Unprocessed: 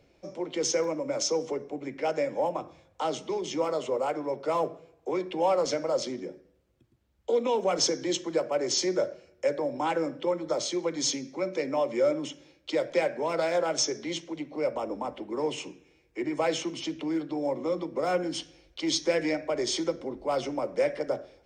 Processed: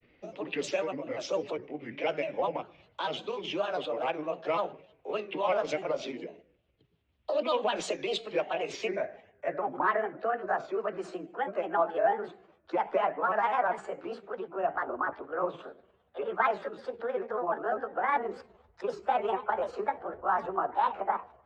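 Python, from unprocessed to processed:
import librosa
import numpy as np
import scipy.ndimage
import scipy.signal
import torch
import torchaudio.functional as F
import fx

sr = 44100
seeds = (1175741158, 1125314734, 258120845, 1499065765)

y = fx.pitch_glide(x, sr, semitones=7.0, runs='starting unshifted')
y = fx.filter_sweep_lowpass(y, sr, from_hz=3000.0, to_hz=1500.0, start_s=8.51, end_s=9.76, q=3.1)
y = fx.granulator(y, sr, seeds[0], grain_ms=100.0, per_s=20.0, spray_ms=13.0, spread_st=3)
y = y * 10.0 ** (-1.0 / 20.0)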